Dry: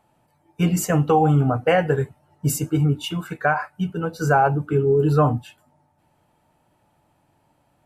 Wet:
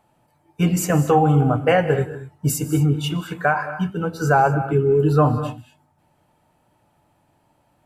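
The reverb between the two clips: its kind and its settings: gated-style reverb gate 260 ms rising, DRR 11 dB; trim +1 dB

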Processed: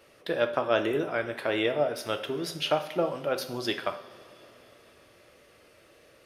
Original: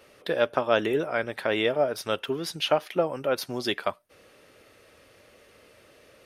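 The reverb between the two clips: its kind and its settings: two-slope reverb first 0.56 s, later 4.4 s, from -18 dB, DRR 6.5 dB; trim -3 dB

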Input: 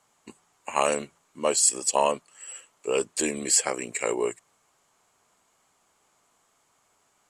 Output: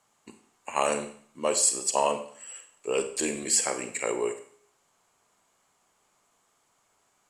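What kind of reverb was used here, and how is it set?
Schroeder reverb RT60 0.56 s, combs from 32 ms, DRR 8 dB; trim -2.5 dB

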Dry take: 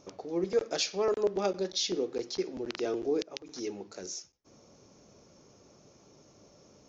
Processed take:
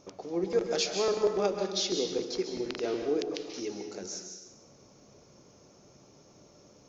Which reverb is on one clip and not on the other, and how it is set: plate-style reverb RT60 1 s, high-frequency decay 0.95×, pre-delay 120 ms, DRR 4 dB

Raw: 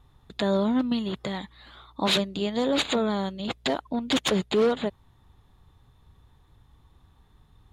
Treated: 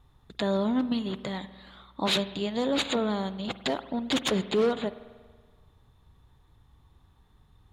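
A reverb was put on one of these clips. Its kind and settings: spring tank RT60 1.5 s, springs 47 ms, chirp 35 ms, DRR 14 dB; trim -2.5 dB

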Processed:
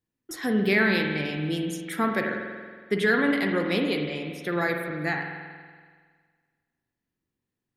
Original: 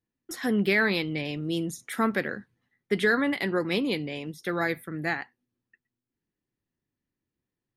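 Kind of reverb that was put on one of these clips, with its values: spring tank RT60 1.7 s, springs 46 ms, chirp 40 ms, DRR 3 dB

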